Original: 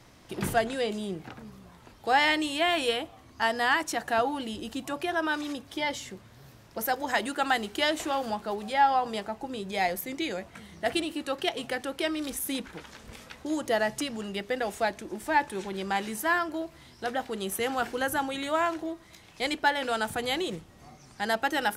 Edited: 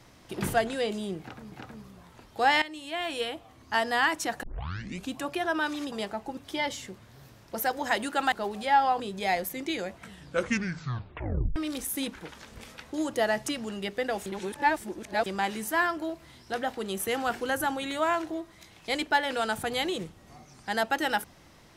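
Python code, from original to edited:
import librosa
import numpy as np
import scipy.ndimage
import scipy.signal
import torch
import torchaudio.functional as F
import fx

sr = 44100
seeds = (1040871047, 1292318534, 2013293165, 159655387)

y = fx.edit(x, sr, fx.repeat(start_s=1.2, length_s=0.32, count=2),
    fx.fade_in_from(start_s=2.3, length_s=1.11, floor_db=-16.0),
    fx.tape_start(start_s=4.11, length_s=0.68),
    fx.cut(start_s=7.55, length_s=0.84),
    fx.move(start_s=9.07, length_s=0.45, to_s=5.6),
    fx.tape_stop(start_s=10.55, length_s=1.53),
    fx.reverse_span(start_s=14.78, length_s=1.0), tone=tone)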